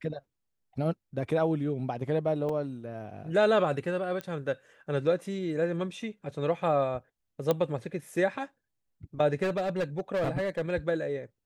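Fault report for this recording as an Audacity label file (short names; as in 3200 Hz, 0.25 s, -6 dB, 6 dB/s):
2.490000	2.490000	gap 4.1 ms
4.210000	4.210000	pop -21 dBFS
7.510000	7.510000	pop -13 dBFS
9.420000	10.710000	clipped -25 dBFS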